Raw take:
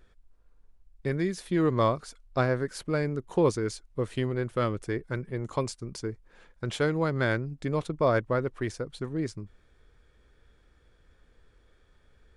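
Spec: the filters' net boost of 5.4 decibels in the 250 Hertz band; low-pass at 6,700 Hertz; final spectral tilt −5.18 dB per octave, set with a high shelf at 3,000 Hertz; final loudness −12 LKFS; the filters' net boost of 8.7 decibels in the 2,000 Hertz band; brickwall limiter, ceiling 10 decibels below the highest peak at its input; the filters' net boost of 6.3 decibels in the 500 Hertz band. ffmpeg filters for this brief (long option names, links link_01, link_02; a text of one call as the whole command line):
ffmpeg -i in.wav -af "lowpass=6700,equalizer=frequency=250:width_type=o:gain=5,equalizer=frequency=500:width_type=o:gain=5.5,equalizer=frequency=2000:width_type=o:gain=8.5,highshelf=frequency=3000:gain=8.5,volume=15.5dB,alimiter=limit=0dB:level=0:latency=1" out.wav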